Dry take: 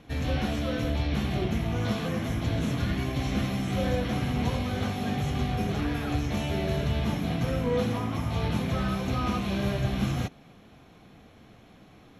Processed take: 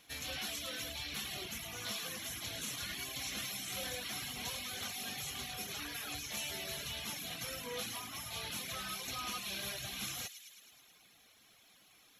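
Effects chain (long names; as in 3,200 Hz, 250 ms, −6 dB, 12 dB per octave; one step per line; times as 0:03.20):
first-order pre-emphasis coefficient 0.97
delay with a high-pass on its return 107 ms, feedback 68%, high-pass 2,100 Hz, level −6 dB
reverb reduction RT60 0.82 s
level +6.5 dB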